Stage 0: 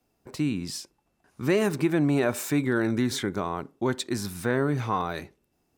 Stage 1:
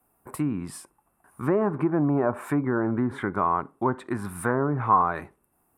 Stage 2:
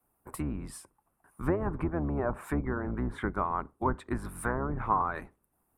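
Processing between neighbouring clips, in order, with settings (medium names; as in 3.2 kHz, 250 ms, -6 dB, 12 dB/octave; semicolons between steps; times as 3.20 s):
low-pass that closes with the level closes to 940 Hz, closed at -20.5 dBFS; FFT filter 520 Hz 0 dB, 1.1 kHz +11 dB, 4.3 kHz -13 dB, 6.4 kHz -10 dB, 9.4 kHz +13 dB
octave divider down 2 oct, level 0 dB; harmonic-percussive split harmonic -10 dB; trim -3 dB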